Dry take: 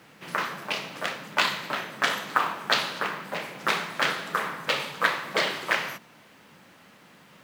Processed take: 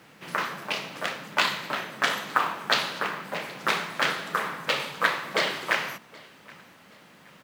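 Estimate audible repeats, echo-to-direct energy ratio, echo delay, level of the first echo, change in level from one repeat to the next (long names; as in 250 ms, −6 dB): 2, −23.5 dB, 773 ms, −24.0 dB, −8.5 dB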